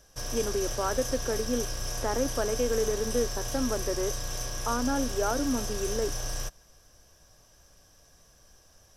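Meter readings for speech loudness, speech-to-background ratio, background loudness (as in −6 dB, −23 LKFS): −31.5 LKFS, 2.5 dB, −34.0 LKFS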